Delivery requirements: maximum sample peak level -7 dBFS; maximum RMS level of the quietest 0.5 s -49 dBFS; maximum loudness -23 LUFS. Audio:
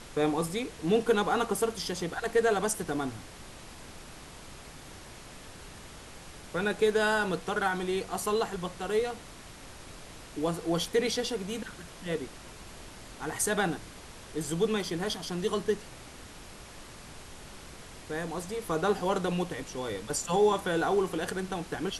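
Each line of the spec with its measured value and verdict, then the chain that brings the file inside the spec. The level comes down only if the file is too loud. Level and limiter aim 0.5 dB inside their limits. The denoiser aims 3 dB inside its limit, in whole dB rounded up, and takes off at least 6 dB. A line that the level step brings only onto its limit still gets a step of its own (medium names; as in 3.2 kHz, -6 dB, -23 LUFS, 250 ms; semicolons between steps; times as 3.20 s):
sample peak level -14.5 dBFS: pass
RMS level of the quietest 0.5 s -47 dBFS: fail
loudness -30.5 LUFS: pass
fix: noise reduction 6 dB, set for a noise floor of -47 dBFS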